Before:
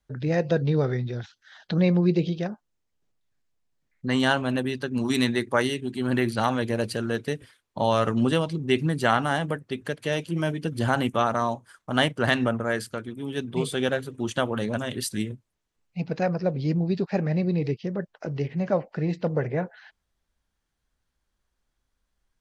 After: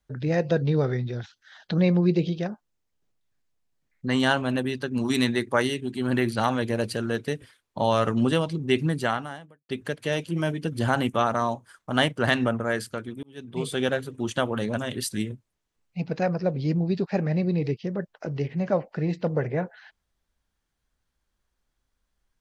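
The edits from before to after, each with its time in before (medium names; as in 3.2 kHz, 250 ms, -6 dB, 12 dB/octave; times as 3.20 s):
8.93–9.69 s: fade out quadratic
13.23–13.76 s: fade in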